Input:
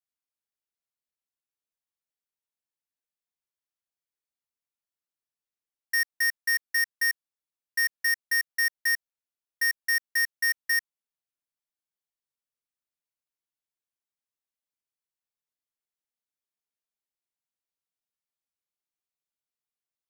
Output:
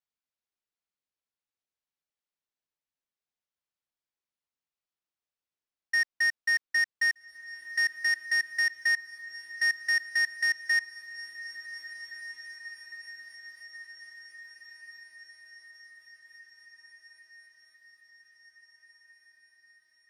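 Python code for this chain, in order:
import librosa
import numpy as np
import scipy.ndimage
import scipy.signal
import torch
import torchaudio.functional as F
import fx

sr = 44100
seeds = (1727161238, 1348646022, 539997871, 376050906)

p1 = scipy.signal.sosfilt(scipy.signal.butter(2, 5700.0, 'lowpass', fs=sr, output='sos'), x)
y = p1 + fx.echo_diffused(p1, sr, ms=1658, feedback_pct=63, wet_db=-14, dry=0)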